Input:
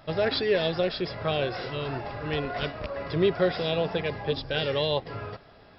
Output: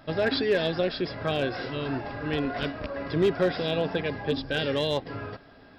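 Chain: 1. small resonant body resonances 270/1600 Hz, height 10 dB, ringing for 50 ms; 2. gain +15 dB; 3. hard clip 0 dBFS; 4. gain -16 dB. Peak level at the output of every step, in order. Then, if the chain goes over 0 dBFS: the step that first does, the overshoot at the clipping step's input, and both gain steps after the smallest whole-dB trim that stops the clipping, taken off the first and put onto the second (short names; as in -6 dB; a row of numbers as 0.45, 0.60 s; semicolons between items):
-10.0, +5.0, 0.0, -16.0 dBFS; step 2, 5.0 dB; step 2 +10 dB, step 4 -11 dB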